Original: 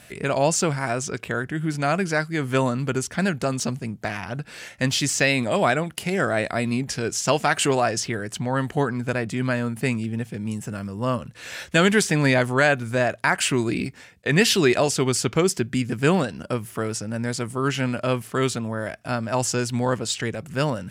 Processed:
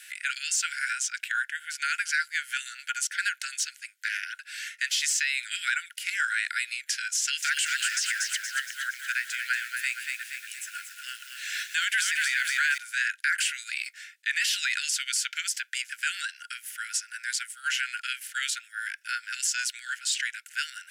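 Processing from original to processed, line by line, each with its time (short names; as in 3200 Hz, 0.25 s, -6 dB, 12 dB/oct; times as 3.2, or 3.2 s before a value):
7.19–12.78 lo-fi delay 0.234 s, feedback 55%, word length 7-bit, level -6 dB
whole clip: Chebyshev high-pass 1400 Hz, order 10; limiter -19.5 dBFS; gain +3 dB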